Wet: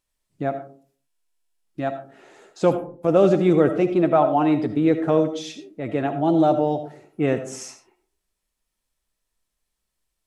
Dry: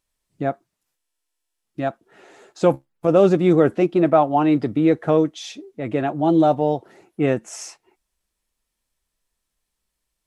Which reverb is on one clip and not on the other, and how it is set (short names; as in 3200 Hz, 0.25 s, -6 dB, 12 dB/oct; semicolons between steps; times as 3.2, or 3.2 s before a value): digital reverb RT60 0.47 s, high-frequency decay 0.35×, pre-delay 35 ms, DRR 9 dB; gain -2 dB